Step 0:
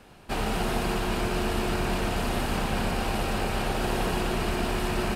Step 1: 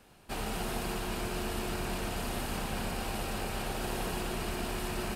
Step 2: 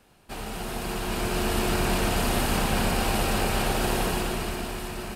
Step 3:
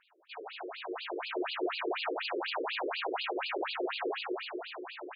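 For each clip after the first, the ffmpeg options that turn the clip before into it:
-af "highshelf=f=6100:g=8.5,volume=0.398"
-af "dynaudnorm=f=260:g=9:m=3.35"
-af "afftfilt=real='re*between(b*sr/1024,370*pow(3500/370,0.5+0.5*sin(2*PI*4.1*pts/sr))/1.41,370*pow(3500/370,0.5+0.5*sin(2*PI*4.1*pts/sr))*1.41)':imag='im*between(b*sr/1024,370*pow(3500/370,0.5+0.5*sin(2*PI*4.1*pts/sr))/1.41,370*pow(3500/370,0.5+0.5*sin(2*PI*4.1*pts/sr))*1.41)':win_size=1024:overlap=0.75"

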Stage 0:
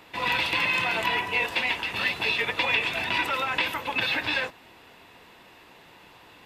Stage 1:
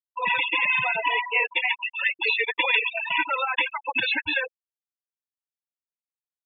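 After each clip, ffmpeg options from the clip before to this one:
-af "afftfilt=real='re*gte(hypot(re,im),0.112)':imag='im*gte(hypot(re,im),0.112)':win_size=1024:overlap=0.75,volume=1.5"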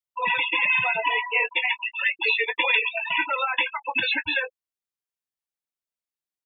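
-filter_complex "[0:a]asplit=2[s0][s1];[s1]adelay=18,volume=0.282[s2];[s0][s2]amix=inputs=2:normalize=0"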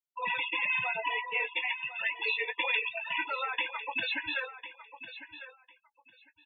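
-af "aecho=1:1:1051|2102:0.224|0.0403,volume=0.376"

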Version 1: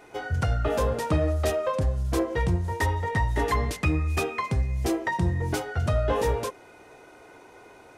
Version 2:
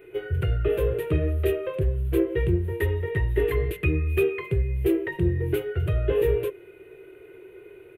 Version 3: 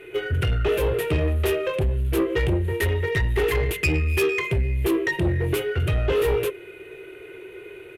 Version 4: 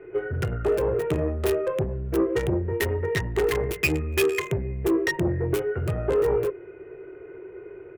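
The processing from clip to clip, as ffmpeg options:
-af "firequalizer=gain_entry='entry(160,0);entry(240,-19);entry(370,12);entry(530,-4);entry(790,-19);entry(1500,-6);entry(2700,1);entry(5300,-29);entry(12000,2)':delay=0.05:min_phase=1,volume=1.12"
-af "crystalizer=i=7:c=0,asoftclip=type=tanh:threshold=0.0891,adynamicsmooth=sensitivity=3.5:basefreq=5000,volume=1.68"
-filter_complex "[0:a]acrossover=split=110|1600[s0][s1][s2];[s0]asoftclip=type=tanh:threshold=0.0211[s3];[s2]acrusher=bits=3:mix=0:aa=0.5[s4];[s3][s1][s4]amix=inputs=3:normalize=0"

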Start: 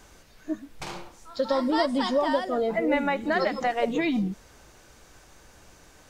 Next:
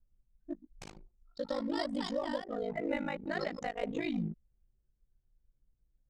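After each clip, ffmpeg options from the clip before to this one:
-af "aeval=exprs='val(0)*sin(2*PI*26*n/s)':c=same,equalizer=f=125:t=o:w=1:g=5,equalizer=f=1000:t=o:w=1:g=-5,equalizer=f=8000:t=o:w=1:g=6,anlmdn=2.51,volume=0.447"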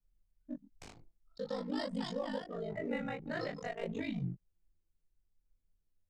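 -af "afreqshift=-36,flanger=delay=22.5:depth=3.2:speed=0.47"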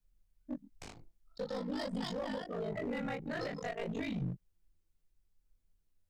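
-af "alimiter=level_in=2.24:limit=0.0631:level=0:latency=1:release=26,volume=0.447,aeval=exprs='clip(val(0),-1,0.0133)':c=same,volume=1.41"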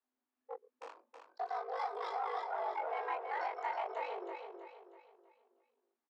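-filter_complex "[0:a]bandpass=f=830:t=q:w=1.2:csg=0,afreqshift=220,asplit=2[s0][s1];[s1]aecho=0:1:322|644|966|1288|1610:0.501|0.205|0.0842|0.0345|0.0142[s2];[s0][s2]amix=inputs=2:normalize=0,volume=1.68"

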